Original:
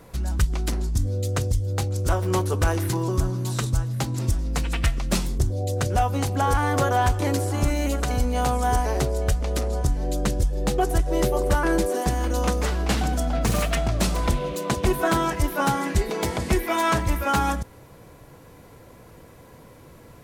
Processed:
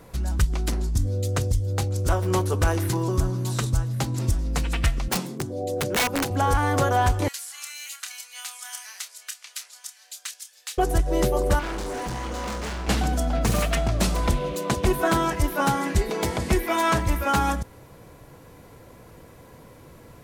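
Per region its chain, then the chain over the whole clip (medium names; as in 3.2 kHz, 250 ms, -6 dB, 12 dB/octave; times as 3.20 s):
5.08–6.31 s: Bessel high-pass 210 Hz, order 8 + tilt shelf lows +4.5 dB, about 1.3 kHz + integer overflow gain 17.5 dB
7.28–10.78 s: Bessel high-pass 2.4 kHz, order 4 + doubling 28 ms -8.5 dB
11.59–12.88 s: low-pass 7.1 kHz + flutter echo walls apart 4 m, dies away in 0.37 s + overload inside the chain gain 28.5 dB
whole clip: none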